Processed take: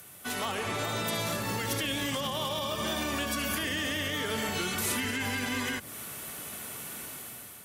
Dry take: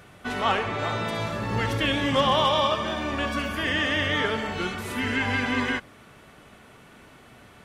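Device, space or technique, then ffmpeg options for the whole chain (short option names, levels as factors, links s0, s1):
FM broadcast chain: -filter_complex "[0:a]highpass=74,dynaudnorm=f=200:g=7:m=3.55,acrossover=split=160|500|7600[s0][s1][s2][s3];[s0]acompressor=threshold=0.0282:ratio=4[s4];[s1]acompressor=threshold=0.0501:ratio=4[s5];[s2]acompressor=threshold=0.0562:ratio=4[s6];[s3]acompressor=threshold=0.00126:ratio=4[s7];[s4][s5][s6][s7]amix=inputs=4:normalize=0,aemphasis=mode=production:type=50fm,alimiter=limit=0.15:level=0:latency=1:release=100,asoftclip=type=hard:threshold=0.106,lowpass=f=15000:w=0.5412,lowpass=f=15000:w=1.3066,aemphasis=mode=production:type=50fm,volume=0.473"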